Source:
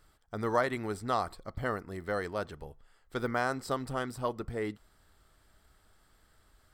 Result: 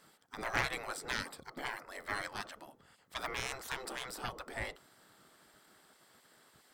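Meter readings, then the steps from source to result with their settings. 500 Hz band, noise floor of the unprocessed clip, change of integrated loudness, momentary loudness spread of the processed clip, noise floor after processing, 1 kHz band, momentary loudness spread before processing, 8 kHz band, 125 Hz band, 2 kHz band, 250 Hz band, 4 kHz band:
-12.5 dB, -67 dBFS, -5.5 dB, 12 LU, -67 dBFS, -7.0 dB, 12 LU, +4.5 dB, -10.5 dB, 0.0 dB, -12.5 dB, +4.5 dB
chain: octave divider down 1 oct, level 0 dB; Chebyshev shaper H 2 -6 dB, 5 -20 dB, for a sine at -14.5 dBFS; spectral gate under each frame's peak -15 dB weak; trim +2 dB

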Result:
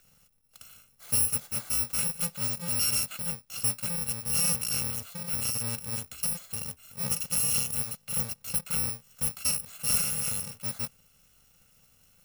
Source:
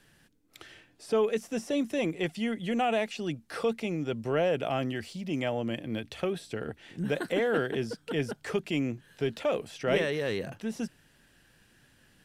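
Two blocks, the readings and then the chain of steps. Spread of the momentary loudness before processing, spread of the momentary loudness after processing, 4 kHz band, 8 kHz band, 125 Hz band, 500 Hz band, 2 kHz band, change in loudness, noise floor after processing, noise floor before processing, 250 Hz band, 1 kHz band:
9 LU, 9 LU, +5.0 dB, +22.5 dB, -1.0 dB, -18.5 dB, -5.5 dB, +3.5 dB, -64 dBFS, -64 dBFS, -11.0 dB, -9.0 dB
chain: bit-reversed sample order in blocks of 128 samples

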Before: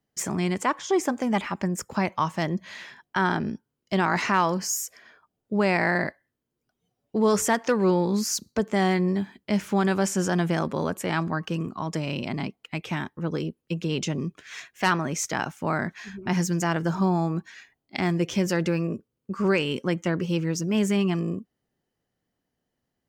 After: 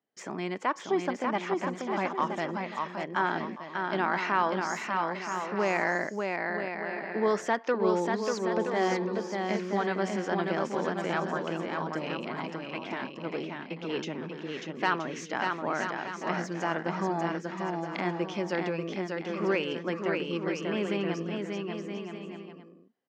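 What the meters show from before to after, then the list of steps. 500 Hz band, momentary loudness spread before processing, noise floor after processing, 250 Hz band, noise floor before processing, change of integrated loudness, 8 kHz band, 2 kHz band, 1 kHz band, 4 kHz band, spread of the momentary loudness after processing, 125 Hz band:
-2.5 dB, 10 LU, -46 dBFS, -7.0 dB, -82 dBFS, -5.0 dB, -14.5 dB, -2.5 dB, -1.5 dB, -5.5 dB, 8 LU, -11.0 dB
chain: high-pass 300 Hz 12 dB/octave; distance through air 180 m; on a send: bouncing-ball echo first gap 590 ms, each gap 0.65×, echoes 5; on the sum: trim -3 dB

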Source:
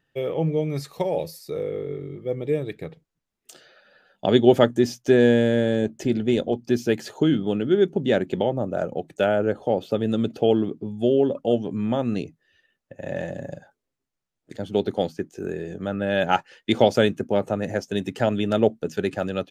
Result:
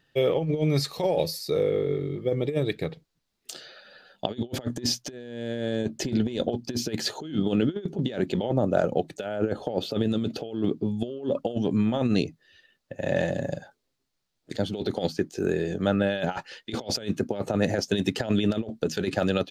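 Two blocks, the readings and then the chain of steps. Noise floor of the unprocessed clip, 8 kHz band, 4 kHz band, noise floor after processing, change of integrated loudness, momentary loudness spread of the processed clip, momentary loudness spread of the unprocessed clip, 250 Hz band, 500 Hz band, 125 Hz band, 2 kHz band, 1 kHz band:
-82 dBFS, no reading, +0.5 dB, -78 dBFS, -4.5 dB, 10 LU, 13 LU, -3.5 dB, -5.5 dB, -1.0 dB, -4.5 dB, -6.5 dB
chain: peaking EQ 4.3 kHz +8 dB 0.8 oct; compressor with a negative ratio -25 dBFS, ratio -0.5

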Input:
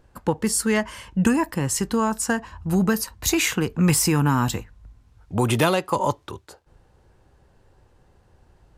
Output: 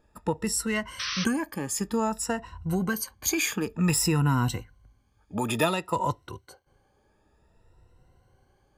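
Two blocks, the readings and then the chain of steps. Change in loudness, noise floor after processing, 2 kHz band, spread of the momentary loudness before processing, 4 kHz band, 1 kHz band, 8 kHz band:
-5.5 dB, -67 dBFS, -4.5 dB, 8 LU, -3.0 dB, -5.0 dB, -4.5 dB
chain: drifting ripple filter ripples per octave 2, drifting +0.55 Hz, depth 14 dB; painted sound noise, 0.99–1.25 s, 1–6.1 kHz -24 dBFS; trim -7.5 dB

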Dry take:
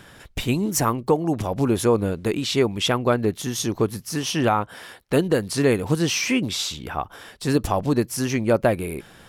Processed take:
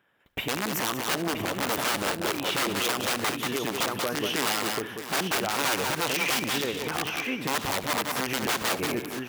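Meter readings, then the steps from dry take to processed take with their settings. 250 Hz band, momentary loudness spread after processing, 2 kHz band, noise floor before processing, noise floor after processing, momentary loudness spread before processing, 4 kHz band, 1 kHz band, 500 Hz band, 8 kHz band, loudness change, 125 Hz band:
-9.5 dB, 4 LU, +2.5 dB, -48 dBFS, -39 dBFS, 10 LU, +0.5 dB, -2.0 dB, -9.0 dB, -1.5 dB, -4.5 dB, -13.5 dB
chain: high-order bell 6.5 kHz -15 dB; companded quantiser 8-bit; delay 969 ms -7.5 dB; gate with hold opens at -35 dBFS; integer overflow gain 16 dB; high-pass 410 Hz 6 dB/octave; multi-tap echo 71/186/631 ms -19.5/-9/-18 dB; peak limiter -18 dBFS, peak gain reduction 8 dB; trim +1.5 dB

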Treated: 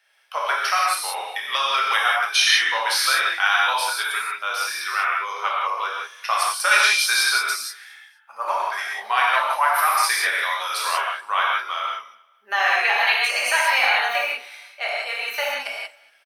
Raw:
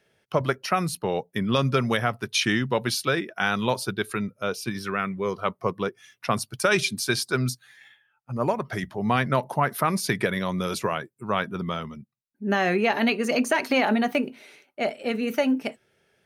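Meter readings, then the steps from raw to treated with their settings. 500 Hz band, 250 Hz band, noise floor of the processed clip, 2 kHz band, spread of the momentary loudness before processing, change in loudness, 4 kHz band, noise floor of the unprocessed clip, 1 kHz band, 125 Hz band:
-6.5 dB, under -30 dB, -55 dBFS, +9.0 dB, 9 LU, +5.5 dB, +9.5 dB, -71 dBFS, +7.0 dB, under -40 dB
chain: high-pass 880 Hz 24 dB/octave; band-stop 6.8 kHz, Q 7; on a send: feedback delay 233 ms, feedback 34%, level -24 dB; on the sum: gated-style reverb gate 210 ms flat, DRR -5 dB; trim +3 dB

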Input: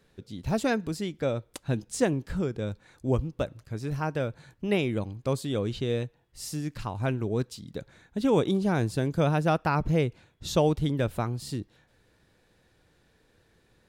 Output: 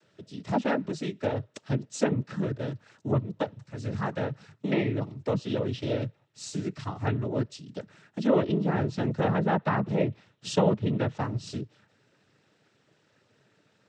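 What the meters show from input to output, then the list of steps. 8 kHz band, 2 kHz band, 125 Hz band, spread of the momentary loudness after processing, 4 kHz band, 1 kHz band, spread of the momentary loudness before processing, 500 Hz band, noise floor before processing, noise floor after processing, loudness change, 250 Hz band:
-3.5 dB, -1.0 dB, -1.0 dB, 13 LU, -2.5 dB, 0.0 dB, 12 LU, -1.0 dB, -66 dBFS, -68 dBFS, -0.5 dB, 0.0 dB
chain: noise-vocoded speech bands 12; low-pass that closes with the level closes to 2.6 kHz, closed at -21.5 dBFS

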